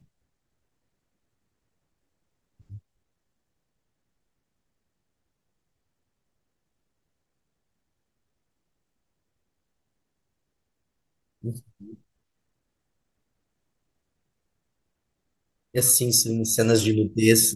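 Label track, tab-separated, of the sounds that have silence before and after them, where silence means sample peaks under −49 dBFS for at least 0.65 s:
2.600000	2.790000	sound
11.430000	11.950000	sound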